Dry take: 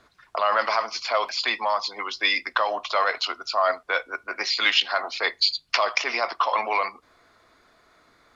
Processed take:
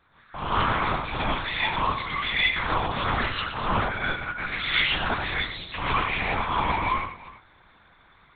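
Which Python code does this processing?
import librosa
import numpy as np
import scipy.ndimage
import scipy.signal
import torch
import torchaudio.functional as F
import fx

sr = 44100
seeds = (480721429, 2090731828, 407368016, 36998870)

p1 = scipy.signal.sosfilt(scipy.signal.butter(2, 590.0, 'highpass', fs=sr, output='sos'), x)
p2 = fx.tube_stage(p1, sr, drive_db=24.0, bias=0.3)
p3 = p2 + fx.echo_multitap(p2, sr, ms=(109, 353), db=(-10.0, -19.5), dry=0)
p4 = fx.rev_gated(p3, sr, seeds[0], gate_ms=180, shape='rising', drr_db=-7.5)
p5 = fx.lpc_vocoder(p4, sr, seeds[1], excitation='whisper', order=8)
y = p5 * 10.0 ** (-3.5 / 20.0)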